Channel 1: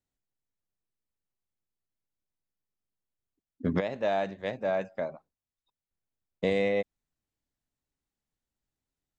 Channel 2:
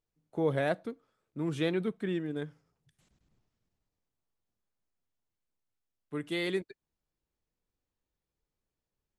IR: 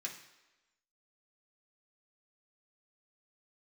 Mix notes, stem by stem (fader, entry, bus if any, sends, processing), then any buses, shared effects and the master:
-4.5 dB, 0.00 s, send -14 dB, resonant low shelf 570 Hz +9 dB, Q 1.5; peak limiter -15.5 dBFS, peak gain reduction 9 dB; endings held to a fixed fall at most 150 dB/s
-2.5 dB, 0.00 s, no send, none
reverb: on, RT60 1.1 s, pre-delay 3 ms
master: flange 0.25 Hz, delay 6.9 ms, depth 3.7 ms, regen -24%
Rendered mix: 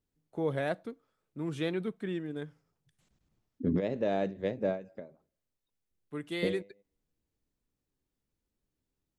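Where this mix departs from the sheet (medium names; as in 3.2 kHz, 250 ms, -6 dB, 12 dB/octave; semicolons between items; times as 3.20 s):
stem 1: send -14 dB -> -23 dB; master: missing flange 0.25 Hz, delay 6.9 ms, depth 3.7 ms, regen -24%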